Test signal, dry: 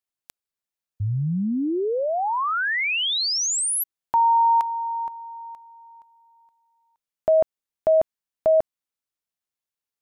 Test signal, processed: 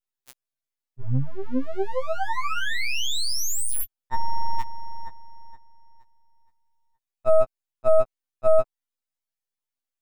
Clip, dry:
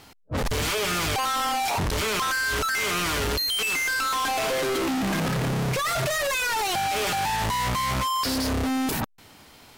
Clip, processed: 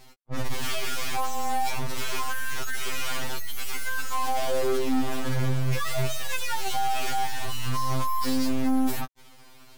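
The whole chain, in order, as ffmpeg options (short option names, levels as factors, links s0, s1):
-af "aeval=exprs='max(val(0),0)':c=same,afftfilt=real='re*2.45*eq(mod(b,6),0)':imag='im*2.45*eq(mod(b,6),0)':win_size=2048:overlap=0.75,volume=1.33"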